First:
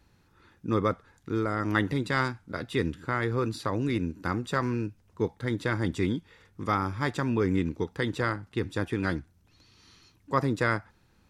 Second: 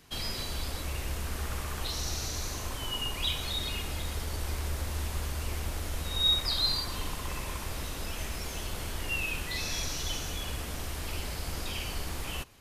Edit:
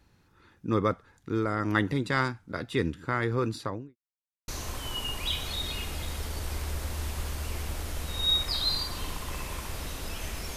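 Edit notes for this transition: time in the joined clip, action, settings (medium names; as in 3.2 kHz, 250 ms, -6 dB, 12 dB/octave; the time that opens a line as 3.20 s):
first
3.53–3.96 s: studio fade out
3.96–4.48 s: mute
4.48 s: go over to second from 2.45 s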